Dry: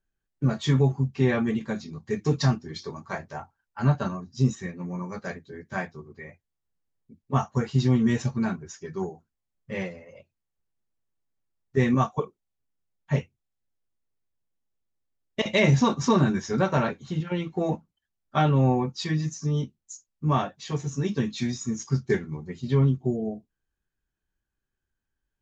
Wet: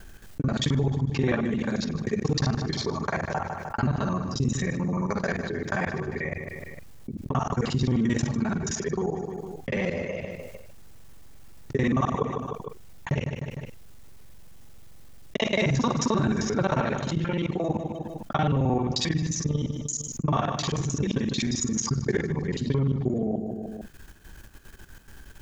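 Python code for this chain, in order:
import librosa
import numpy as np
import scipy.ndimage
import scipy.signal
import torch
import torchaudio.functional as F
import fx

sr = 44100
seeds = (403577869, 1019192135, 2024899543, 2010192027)

y = fx.local_reverse(x, sr, ms=44.0)
y = fx.level_steps(y, sr, step_db=12)
y = fx.echo_feedback(y, sr, ms=152, feedback_pct=39, wet_db=-18)
y = fx.env_flatten(y, sr, amount_pct=70)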